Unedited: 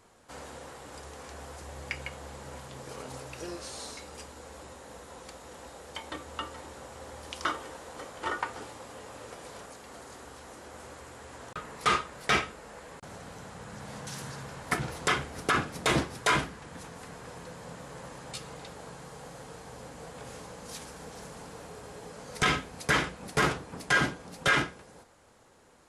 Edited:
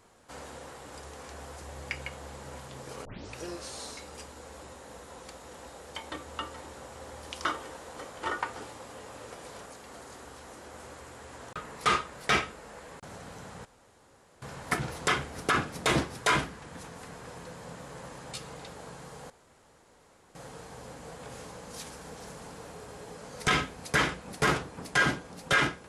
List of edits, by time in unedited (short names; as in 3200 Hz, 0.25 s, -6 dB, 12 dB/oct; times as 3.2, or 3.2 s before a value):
3.05 tape start 0.30 s
13.65–14.42 room tone
19.3 insert room tone 1.05 s